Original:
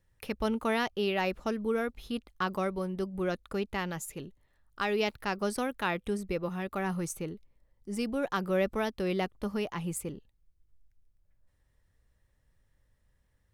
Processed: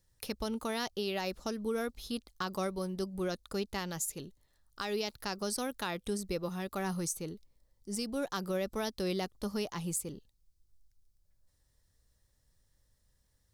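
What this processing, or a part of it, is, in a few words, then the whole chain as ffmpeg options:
over-bright horn tweeter: -af "highshelf=f=3.4k:t=q:w=1.5:g=9,alimiter=limit=-21.5dB:level=0:latency=1:release=171,volume=-2.5dB"

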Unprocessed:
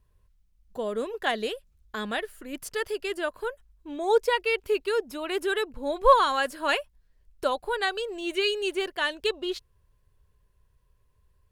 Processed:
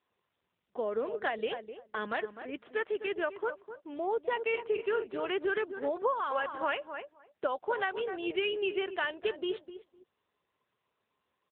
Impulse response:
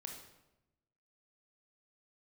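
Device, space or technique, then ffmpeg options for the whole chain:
voicemail: -filter_complex "[0:a]asettb=1/sr,asplit=3[a][b][c];[a]atrim=end=4.434[d];[b]atrim=start=4.43:end=5.1,asetpts=PTS-STARTPTS,afade=t=in:d=0.004:c=qsin,afade=t=out:st=0.666:d=0.004:c=qsin,asplit=2[e][f];[f]adelay=44,volume=-9.5dB[g];[e][g]amix=inputs=2:normalize=0,atrim=end_sample=29547[h];[c]atrim=start=5.096[i];[d][h]acrossfade=d=0.004:c1=hsin:c2=qsin[j];[j][i]acrossfade=d=0.004:c1=qsin:c2=hsin,highpass=310,lowpass=3.1k,asplit=2[k][l];[l]adelay=254,lowpass=f=1.3k:p=1,volume=-11dB,asplit=2[m][n];[n]adelay=254,lowpass=f=1.3k:p=1,volume=0.16[o];[k][m][o]amix=inputs=3:normalize=0,acompressor=threshold=-26dB:ratio=12" -ar 8000 -c:a libopencore_amrnb -b:a 7950

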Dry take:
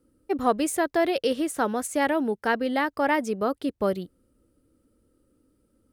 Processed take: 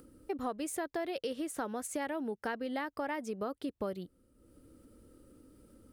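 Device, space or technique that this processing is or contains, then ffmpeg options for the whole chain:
upward and downward compression: -af "acompressor=mode=upward:threshold=-46dB:ratio=2.5,acompressor=threshold=-33dB:ratio=4,volume=-2dB"

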